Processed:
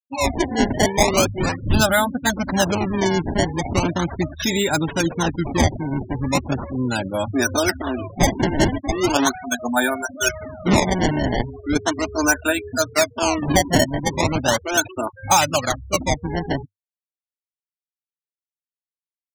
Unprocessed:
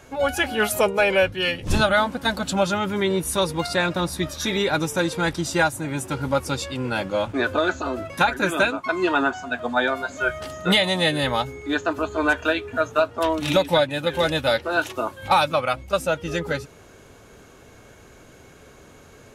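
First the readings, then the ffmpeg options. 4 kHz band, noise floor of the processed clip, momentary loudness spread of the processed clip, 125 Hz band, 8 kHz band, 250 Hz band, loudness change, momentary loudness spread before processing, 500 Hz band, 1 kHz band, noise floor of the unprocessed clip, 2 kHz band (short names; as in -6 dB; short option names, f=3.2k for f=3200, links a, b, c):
0.0 dB, under -85 dBFS, 7 LU, +6.0 dB, +10.0 dB, +5.0 dB, +2.0 dB, 7 LU, 0.0 dB, +1.5 dB, -49 dBFS, -0.5 dB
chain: -af "acrusher=samples=20:mix=1:aa=0.000001:lfo=1:lforange=32:lforate=0.38,afftfilt=real='re*gte(hypot(re,im),0.0501)':imag='im*gte(hypot(re,im),0.0501)':win_size=1024:overlap=0.75,equalizer=f=100:t=o:w=0.33:g=5,equalizer=f=250:t=o:w=0.33:g=4,equalizer=f=500:t=o:w=0.33:g=-8,equalizer=f=1.25k:t=o:w=0.33:g=-5,equalizer=f=6.3k:t=o:w=0.33:g=11,volume=3dB"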